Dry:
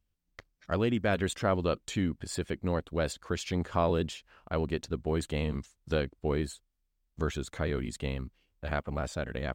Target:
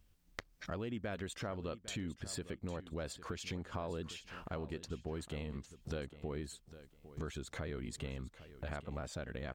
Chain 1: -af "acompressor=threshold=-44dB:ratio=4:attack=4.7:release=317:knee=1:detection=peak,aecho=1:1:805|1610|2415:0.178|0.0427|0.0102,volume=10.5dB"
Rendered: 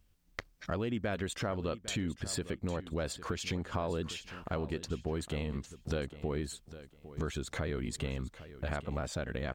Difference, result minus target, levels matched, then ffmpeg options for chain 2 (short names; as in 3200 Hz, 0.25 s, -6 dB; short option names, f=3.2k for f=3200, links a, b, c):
compressor: peak gain reduction -6.5 dB
-af "acompressor=threshold=-52.5dB:ratio=4:attack=4.7:release=317:knee=1:detection=peak,aecho=1:1:805|1610|2415:0.178|0.0427|0.0102,volume=10.5dB"